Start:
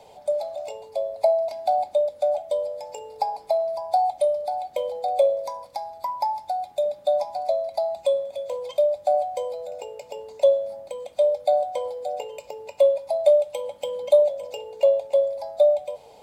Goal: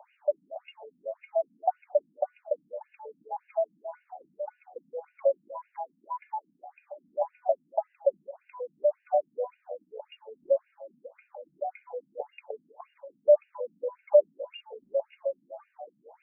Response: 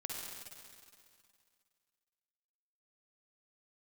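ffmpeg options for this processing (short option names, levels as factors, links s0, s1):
-af "afftfilt=real='re*between(b*sr/1024,210*pow(2100/210,0.5+0.5*sin(2*PI*1.8*pts/sr))/1.41,210*pow(2100/210,0.5+0.5*sin(2*PI*1.8*pts/sr))*1.41)':imag='im*between(b*sr/1024,210*pow(2100/210,0.5+0.5*sin(2*PI*1.8*pts/sr))/1.41,210*pow(2100/210,0.5+0.5*sin(2*PI*1.8*pts/sr))*1.41)':win_size=1024:overlap=0.75"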